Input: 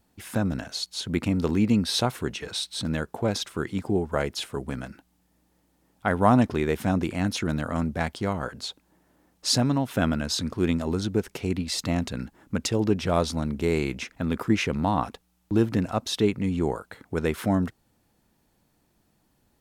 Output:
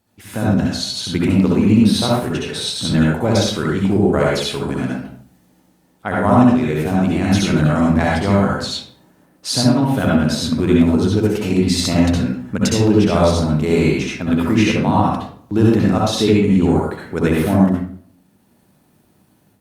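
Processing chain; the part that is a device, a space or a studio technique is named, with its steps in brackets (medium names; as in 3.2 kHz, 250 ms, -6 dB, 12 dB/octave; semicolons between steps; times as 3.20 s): far-field microphone of a smart speaker (reverberation RT60 0.55 s, pre-delay 59 ms, DRR -3.5 dB; high-pass 82 Hz; level rider gain up to 7 dB; Opus 48 kbps 48 kHz)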